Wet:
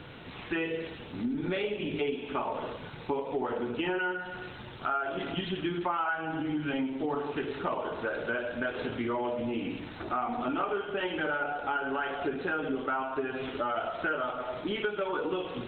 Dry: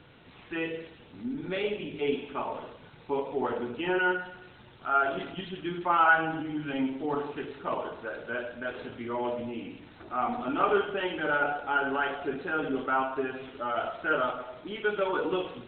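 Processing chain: compression 8:1, threshold -37 dBFS, peak gain reduction 19.5 dB; trim +8.5 dB

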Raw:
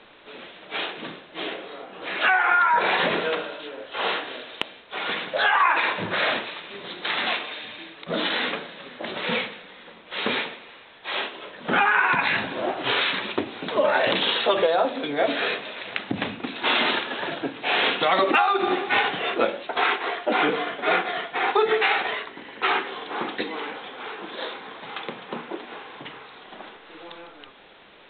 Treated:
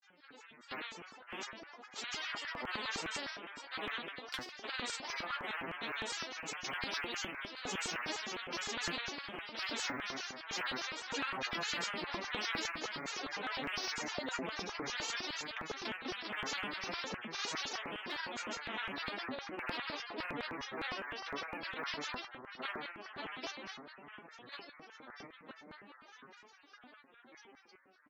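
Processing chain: Doppler pass-by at 10.91 s, 20 m/s, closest 30 m; gate -48 dBFS, range -12 dB; harmonic-percussive split percussive +5 dB; reverse; compression 4:1, threshold -36 dBFS, peak gain reduction 18.5 dB; reverse; feedback comb 240 Hz, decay 0.33 s, harmonics all, mix 100%; repeats whose band climbs or falls 118 ms, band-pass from 240 Hz, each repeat 0.7 oct, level -8 dB; granulator 91 ms, grains 20 per s, spray 26 ms, pitch spread up and down by 12 st; flange 0.45 Hz, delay 6.4 ms, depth 4.5 ms, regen -33%; LFO high-pass square 4.9 Hz 240–1500 Hz; spectrum-flattening compressor 2:1; trim +11.5 dB

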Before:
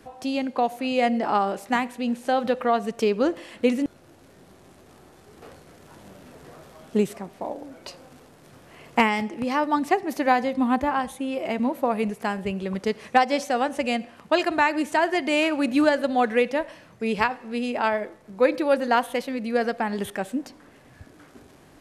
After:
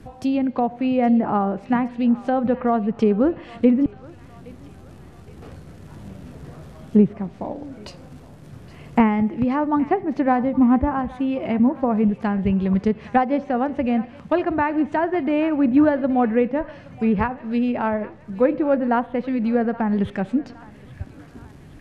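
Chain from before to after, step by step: low-pass that closes with the level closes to 1.5 kHz, closed at -21 dBFS; tone controls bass +15 dB, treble -2 dB; on a send: thinning echo 819 ms, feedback 68%, high-pass 1 kHz, level -17 dB

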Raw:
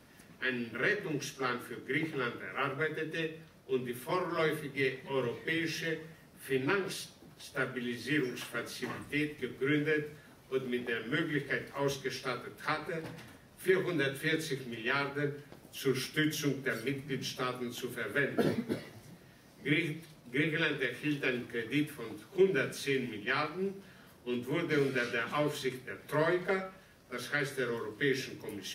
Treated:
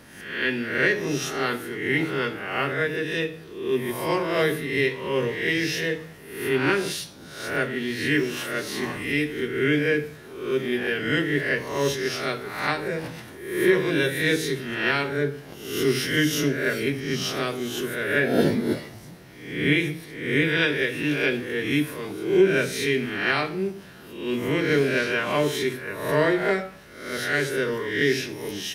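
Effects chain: reverse spectral sustain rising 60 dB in 0.72 s; dynamic bell 1.2 kHz, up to -5 dB, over -47 dBFS, Q 3.4; trim +7.5 dB

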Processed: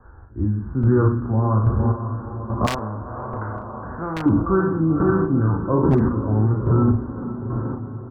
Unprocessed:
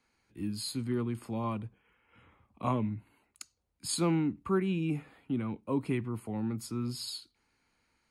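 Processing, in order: spectral sustain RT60 0.63 s; steep low-pass 1.6 kHz 96 dB/octave; echo that smears into a reverb 507 ms, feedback 59%, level -10 dB; square tremolo 1.2 Hz, depth 65%, duty 30%; resonant low shelf 120 Hz +11 dB, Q 1.5; doubling 37 ms -6 dB; in parallel at -1 dB: compression 10:1, threshold -47 dBFS, peak gain reduction 23 dB; on the sum: flange 0.3 Hz, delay 1.7 ms, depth 7.4 ms, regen -59%; wavefolder -25.5 dBFS; loudness maximiser +30 dB; 2.66–4.26 s: spectrum-flattening compressor 2:1; trim -8 dB

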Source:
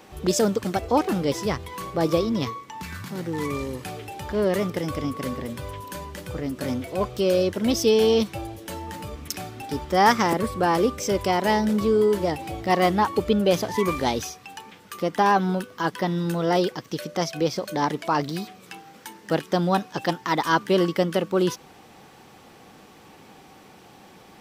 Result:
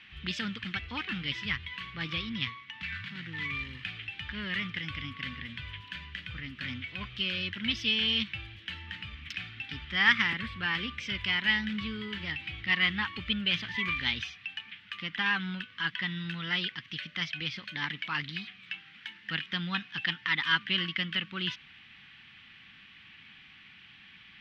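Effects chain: FFT filter 100 Hz 0 dB, 230 Hz -5 dB, 430 Hz -21 dB, 650 Hz -23 dB, 1.8 kHz +11 dB, 3.1 kHz +14 dB, 6.7 kHz -17 dB, 11 kHz -29 dB; trim -7.5 dB

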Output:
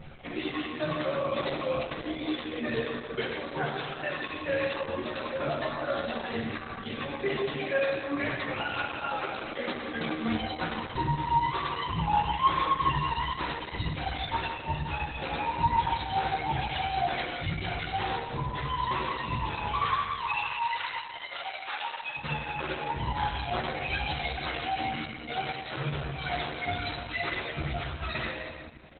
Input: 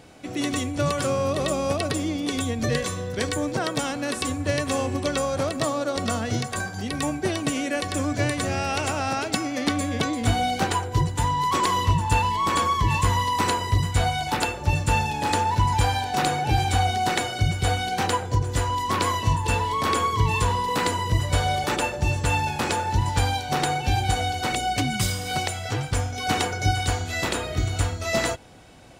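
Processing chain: reverb removal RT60 1.3 s; 19.79–22.16 s: high-pass 970 Hz 12 dB/octave; reverb removal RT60 0.95 s; tilt EQ +4 dB/octave; compression 5:1, threshold -28 dBFS, peak gain reduction 13 dB; chorus 0.54 Hz, delay 15 ms, depth 2.1 ms; vibrato 2.8 Hz 88 cents; tape spacing loss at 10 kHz 26 dB; doubling 13 ms -2 dB; feedback delay 170 ms, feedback 47%, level -11.5 dB; reverberation RT60 1.7 s, pre-delay 6 ms, DRR -8.5 dB; Opus 8 kbps 48 kHz

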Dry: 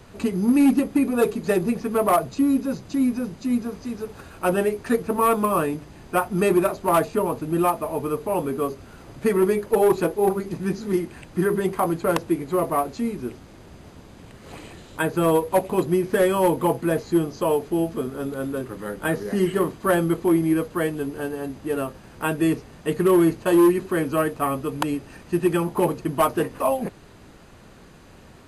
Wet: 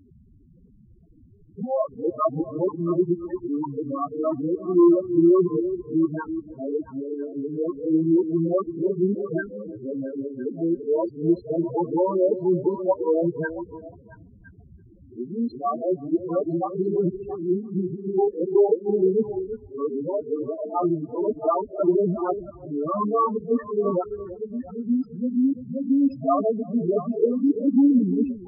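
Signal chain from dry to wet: reverse the whole clip; loudest bins only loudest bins 4; repeats whose band climbs or falls 337 ms, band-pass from 340 Hz, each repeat 1.4 oct, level -9 dB

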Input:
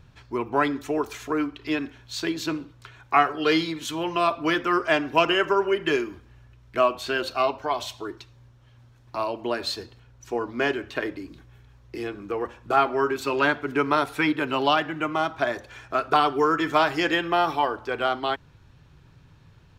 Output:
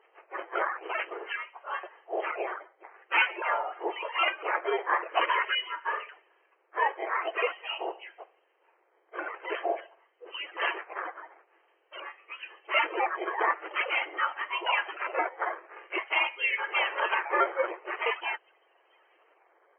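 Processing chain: spectrum inverted on a logarithmic axis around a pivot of 1.7 kHz; decimation with a swept rate 9×, swing 160% 0.47 Hz; brick-wall FIR band-pass 320–3200 Hz

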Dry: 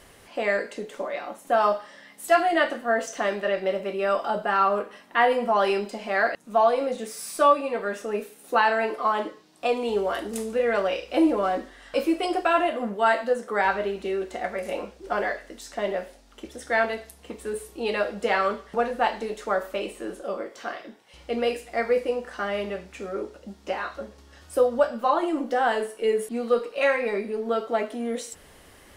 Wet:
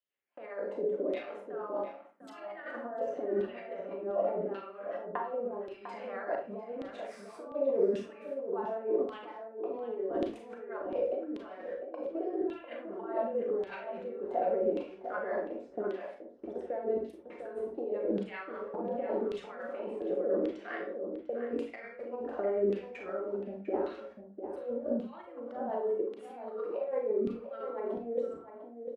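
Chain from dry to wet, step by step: gate -42 dBFS, range -34 dB; tilt shelf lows +9 dB, about 890 Hz; hum notches 50/100/150/200 Hz; compressor with a negative ratio -29 dBFS, ratio -1; LFO band-pass saw down 0.88 Hz 290–3400 Hz; rotary cabinet horn 5 Hz; echo from a far wall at 120 m, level -8 dB; on a send at -2 dB: reverberation RT60 0.35 s, pre-delay 27 ms

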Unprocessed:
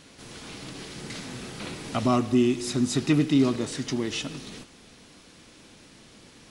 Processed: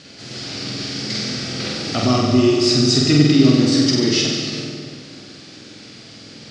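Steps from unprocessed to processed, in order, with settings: dynamic bell 5.3 kHz, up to +6 dB, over -54 dBFS, Q 3.5; in parallel at -2.5 dB: peak limiter -19.5 dBFS, peak gain reduction 8.5 dB; on the sum: cabinet simulation 100–7000 Hz, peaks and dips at 110 Hz +6 dB, 1 kHz -9 dB, 4.7 kHz +9 dB; flutter echo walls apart 8.1 m, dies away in 0.96 s; algorithmic reverb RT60 2.5 s, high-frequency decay 0.35×, pre-delay 105 ms, DRR 6.5 dB; trim +2 dB

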